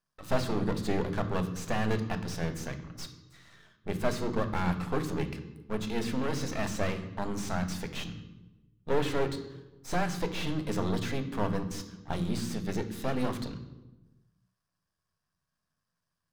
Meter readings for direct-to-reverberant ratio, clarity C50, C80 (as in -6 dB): 7.0 dB, 11.0 dB, 12.5 dB